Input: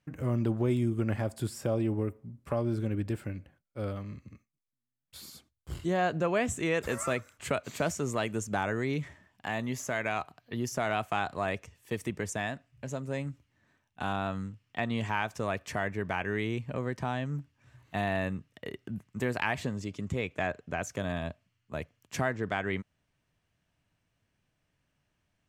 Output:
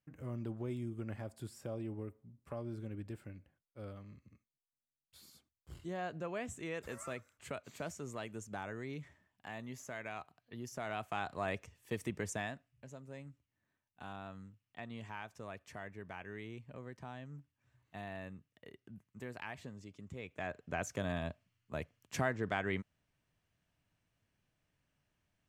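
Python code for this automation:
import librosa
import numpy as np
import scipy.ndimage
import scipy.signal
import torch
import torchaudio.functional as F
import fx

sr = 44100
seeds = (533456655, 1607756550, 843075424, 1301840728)

y = fx.gain(x, sr, db=fx.line((10.63, -12.5), (11.54, -5.0), (12.35, -5.0), (12.92, -15.0), (20.13, -15.0), (20.77, -4.0)))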